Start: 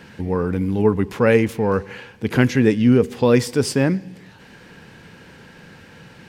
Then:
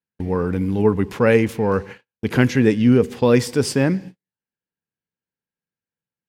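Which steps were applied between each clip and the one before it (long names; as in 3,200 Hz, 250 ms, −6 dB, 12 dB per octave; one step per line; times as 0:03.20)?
noise gate −32 dBFS, range −51 dB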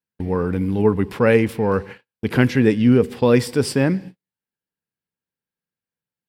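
parametric band 6,500 Hz −9 dB 0.25 octaves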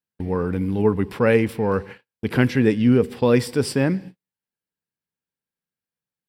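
notch filter 6,600 Hz, Q 14
level −2 dB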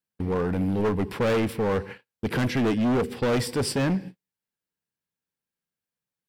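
gain into a clipping stage and back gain 20.5 dB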